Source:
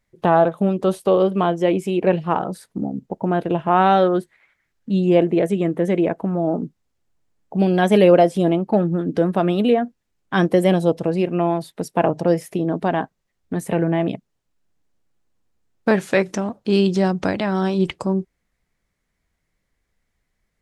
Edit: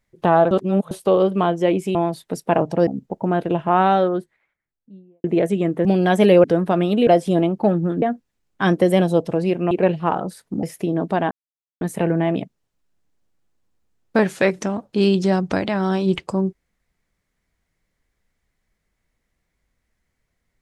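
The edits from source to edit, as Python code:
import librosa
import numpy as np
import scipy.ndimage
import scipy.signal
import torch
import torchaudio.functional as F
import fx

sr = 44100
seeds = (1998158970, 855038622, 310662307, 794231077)

y = fx.studio_fade_out(x, sr, start_s=3.52, length_s=1.72)
y = fx.edit(y, sr, fx.reverse_span(start_s=0.51, length_s=0.4),
    fx.swap(start_s=1.95, length_s=0.92, other_s=11.43, other_length_s=0.92),
    fx.cut(start_s=5.85, length_s=1.72),
    fx.move(start_s=9.11, length_s=0.63, to_s=8.16),
    fx.silence(start_s=13.03, length_s=0.5), tone=tone)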